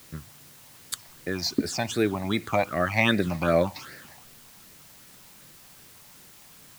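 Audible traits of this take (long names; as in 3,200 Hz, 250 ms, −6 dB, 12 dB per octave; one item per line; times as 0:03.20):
phaser sweep stages 8, 2.6 Hz, lowest notch 400–1,000 Hz
a quantiser's noise floor 10 bits, dither triangular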